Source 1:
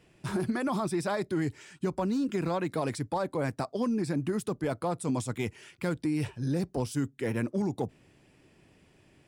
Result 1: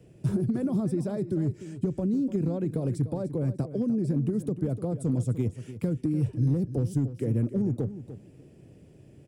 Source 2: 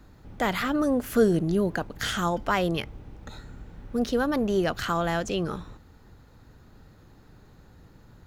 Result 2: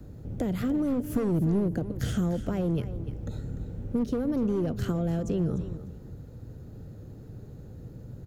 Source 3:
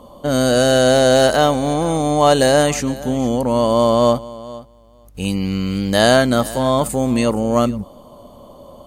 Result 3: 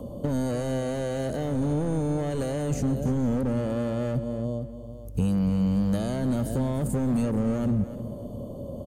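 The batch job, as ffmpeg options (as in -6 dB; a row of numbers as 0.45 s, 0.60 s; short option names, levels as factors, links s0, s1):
-filter_complex "[0:a]asplit=2[s0][s1];[s1]alimiter=limit=0.266:level=0:latency=1,volume=1.12[s2];[s0][s2]amix=inputs=2:normalize=0,equalizer=f=125:t=o:w=1:g=8,equalizer=f=250:t=o:w=1:g=3,equalizer=f=500:t=o:w=1:g=8,equalizer=f=1000:t=o:w=1:g=-9,equalizer=f=2000:t=o:w=1:g=-6,equalizer=f=4000:t=o:w=1:g=-6,acrossover=split=880|1900[s3][s4][s5];[s3]asoftclip=type=hard:threshold=0.299[s6];[s6][s4][s5]amix=inputs=3:normalize=0,acompressor=threshold=0.126:ratio=6,equalizer=f=76:w=0.77:g=4.5,acrossover=split=340[s7][s8];[s8]acompressor=threshold=0.00562:ratio=1.5[s9];[s7][s9]amix=inputs=2:normalize=0,aecho=1:1:297|594:0.224|0.0403,volume=0.562"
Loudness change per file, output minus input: +3.0 LU, -3.0 LU, -11.5 LU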